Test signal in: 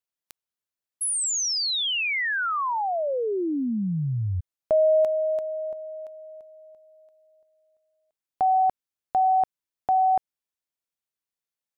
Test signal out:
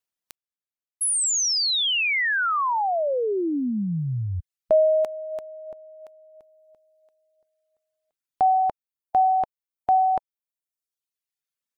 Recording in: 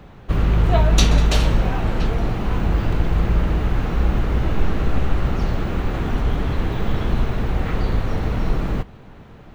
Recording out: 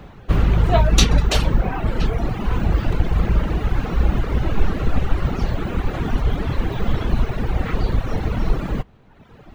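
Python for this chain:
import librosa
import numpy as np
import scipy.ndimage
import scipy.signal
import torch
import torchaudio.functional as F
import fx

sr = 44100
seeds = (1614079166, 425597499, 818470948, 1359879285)

y = fx.dereverb_blind(x, sr, rt60_s=1.3)
y = y * librosa.db_to_amplitude(3.0)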